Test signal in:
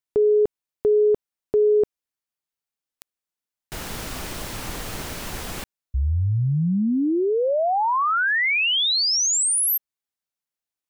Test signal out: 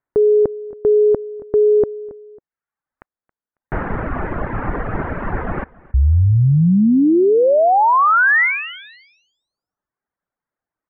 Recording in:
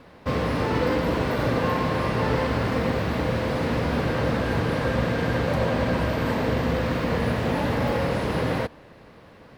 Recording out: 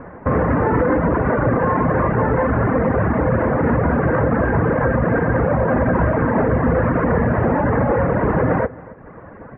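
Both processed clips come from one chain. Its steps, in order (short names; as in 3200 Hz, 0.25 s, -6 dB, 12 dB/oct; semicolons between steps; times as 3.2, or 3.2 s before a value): steep low-pass 1800 Hz 36 dB/oct; reverb removal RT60 0.91 s; feedback echo 0.274 s, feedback 30%, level -23 dB; maximiser +21.5 dB; gain -8 dB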